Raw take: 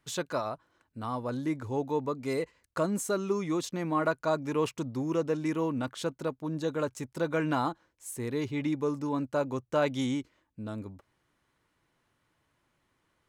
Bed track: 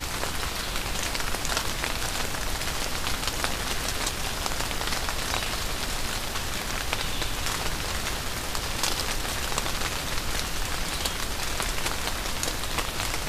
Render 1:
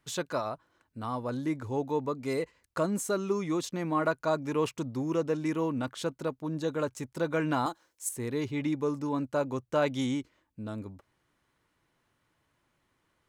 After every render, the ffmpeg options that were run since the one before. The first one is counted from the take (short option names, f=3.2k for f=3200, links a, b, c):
-filter_complex "[0:a]asettb=1/sr,asplit=3[a][b][c];[a]atrim=end=7.664[d];[b]atrim=start=7.66:end=8.09,asetpts=PTS-STARTPTS,afade=t=in:d=0.004:c=qsin,afade=t=out:st=0.426:d=0.004:c=qsin,bass=f=250:g=-11,treble=f=4k:g=11[e];[c]atrim=start=8.086[f];[d][e]acrossfade=d=0.004:c1=hsin:c2=qsin[g];[g][f]acrossfade=d=0.004:c1=qsin:c2=hsin"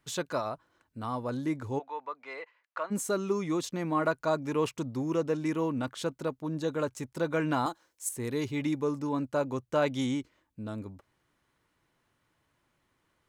-filter_complex "[0:a]asplit=3[a][b][c];[a]afade=t=out:st=1.78:d=0.02[d];[b]asuperpass=centerf=1500:order=4:qfactor=0.7,afade=t=in:st=1.78:d=0.02,afade=t=out:st=2.9:d=0.02[e];[c]afade=t=in:st=2.9:d=0.02[f];[d][e][f]amix=inputs=3:normalize=0,asettb=1/sr,asplit=3[g][h][i];[g]atrim=end=8.244[j];[h]atrim=start=8.24:end=8.79,asetpts=PTS-STARTPTS,afade=t=in:d=0.004:c=qsin,afade=t=out:st=0.546:d=0.004:c=qsin,highshelf=f=5.1k:g=7[k];[i]atrim=start=8.786[l];[j][k]acrossfade=d=0.004:c1=hsin:c2=qsin[m];[m][l]acrossfade=d=0.004:c1=qsin:c2=hsin"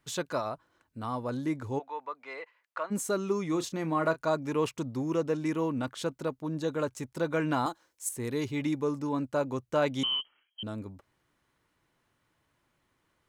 -filter_complex "[0:a]asettb=1/sr,asplit=3[a][b][c];[a]atrim=end=3.494[d];[b]atrim=start=3.49:end=4.28,asetpts=PTS-STARTPTS,afade=t=in:d=0.004:c=qsin,afade=t=out:st=0.786:d=0.004:c=qsin,asplit=2[e][f];[f]adelay=31,volume=-12.5dB[g];[e][g]amix=inputs=2:normalize=0,atrim=end_sample=34839[h];[c]atrim=start=4.276[i];[d][h]acrossfade=d=0.004:c1=hsin:c2=qsin[j];[j][i]acrossfade=d=0.004:c1=qsin:c2=hsin,asettb=1/sr,asplit=3[k][l][m];[k]atrim=end=10.034[n];[l]atrim=start=10.03:end=10.63,asetpts=PTS-STARTPTS,afade=t=in:d=0.004:c=qsin,afade=t=out:st=0.596:d=0.004:c=qsin,lowpass=f=2.8k:t=q:w=0.5098,lowpass=f=2.8k:t=q:w=0.6013,lowpass=f=2.8k:t=q:w=0.9,lowpass=f=2.8k:t=q:w=2.563,afreqshift=-3300[o];[m]atrim=start=10.626[p];[n][o]acrossfade=d=0.004:c1=hsin:c2=qsin[q];[q][p]acrossfade=d=0.004:c1=qsin:c2=hsin"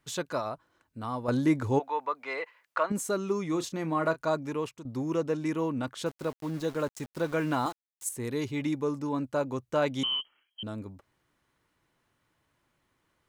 -filter_complex "[0:a]asettb=1/sr,asplit=3[a][b][c];[a]atrim=end=1.284[d];[b]atrim=start=1.28:end=2.92,asetpts=PTS-STARTPTS,afade=t=in:d=0.004:c=qsin,afade=t=out:st=1.636:d=0.004:c=qsin,acontrast=78[e];[c]atrim=start=2.916[f];[d][e]acrossfade=d=0.004:c1=hsin:c2=qsin[g];[g][f]acrossfade=d=0.004:c1=qsin:c2=hsin,asettb=1/sr,asplit=3[h][i][j];[h]atrim=end=6.064[k];[i]atrim=start=6.06:end=8.04,asetpts=PTS-STARTPTS,afade=t=in:d=0.004:c=qsin,afade=t=out:st=1.976:d=0.004:c=qsin,aeval=exprs='val(0)*gte(abs(val(0)),0.0075)':c=same[l];[j]atrim=start=8.036[m];[k][l]acrossfade=d=0.004:c1=hsin:c2=qsin[n];[n][m]acrossfade=d=0.004:c1=qsin:c2=hsin,asplit=2[o][p];[o]atrim=end=4.85,asetpts=PTS-STARTPTS,afade=t=out:st=4.39:d=0.46:silence=0.199526[q];[p]atrim=start=4.85,asetpts=PTS-STARTPTS,afade=t=in:d=0.004:c=hsin:silence=0.199526[r];[q][r]concat=n=2:v=0:a=1"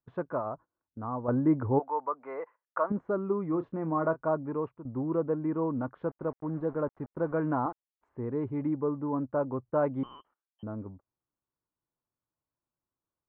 -af "agate=range=-19dB:threshold=-47dB:ratio=16:detection=peak,lowpass=f=1.3k:w=0.5412,lowpass=f=1.3k:w=1.3066"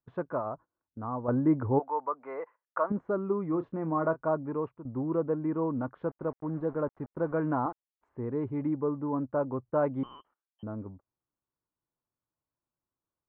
-af anull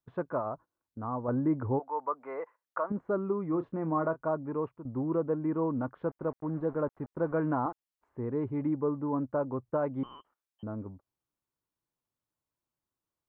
-af "alimiter=limit=-20dB:level=0:latency=1:release=330"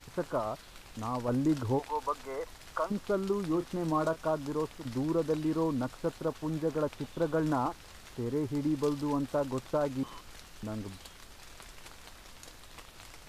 -filter_complex "[1:a]volume=-21.5dB[a];[0:a][a]amix=inputs=2:normalize=0"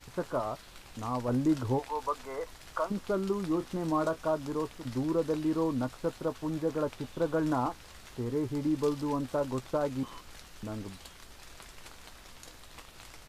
-filter_complex "[0:a]asplit=2[a][b];[b]adelay=16,volume=-12.5dB[c];[a][c]amix=inputs=2:normalize=0"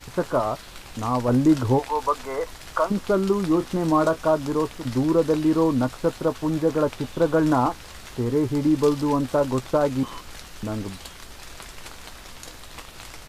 -af "volume=9.5dB"